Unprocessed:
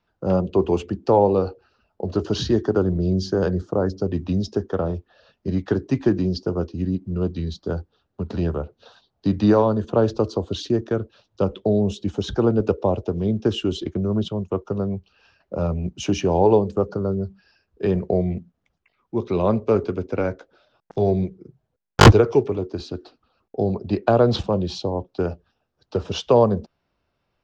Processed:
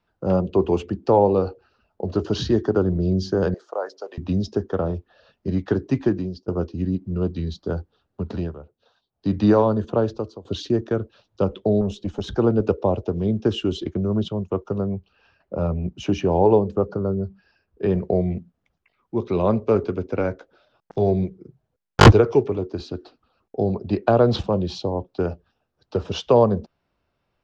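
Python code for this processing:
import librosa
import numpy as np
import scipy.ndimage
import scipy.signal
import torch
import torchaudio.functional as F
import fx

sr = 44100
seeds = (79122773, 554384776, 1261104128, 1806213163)

y = fx.highpass(x, sr, hz=560.0, slope=24, at=(3.54, 4.18))
y = fx.tube_stage(y, sr, drive_db=15.0, bias=0.5, at=(11.81, 12.36))
y = fx.high_shelf(y, sr, hz=4600.0, db=-9.5, at=(14.81, 17.91))
y = fx.edit(y, sr, fx.fade_out_to(start_s=6.0, length_s=0.48, floor_db=-23.0),
    fx.fade_down_up(start_s=8.31, length_s=1.04, db=-13.0, fade_s=0.25),
    fx.fade_out_to(start_s=9.85, length_s=0.6, floor_db=-21.5), tone=tone)
y = fx.high_shelf(y, sr, hz=6900.0, db=-7.0)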